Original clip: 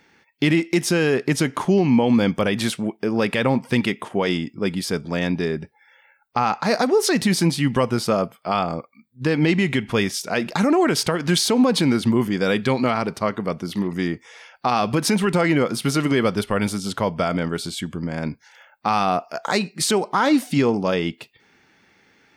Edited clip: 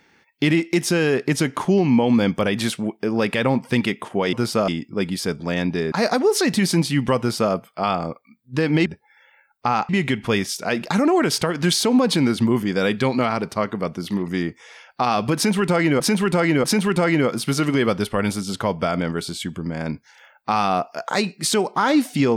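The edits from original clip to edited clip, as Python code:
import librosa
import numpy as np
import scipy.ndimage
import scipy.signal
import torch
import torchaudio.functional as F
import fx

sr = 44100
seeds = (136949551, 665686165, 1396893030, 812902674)

y = fx.edit(x, sr, fx.move(start_s=5.57, length_s=1.03, to_s=9.54),
    fx.duplicate(start_s=7.86, length_s=0.35, to_s=4.33),
    fx.repeat(start_s=15.01, length_s=0.64, count=3), tone=tone)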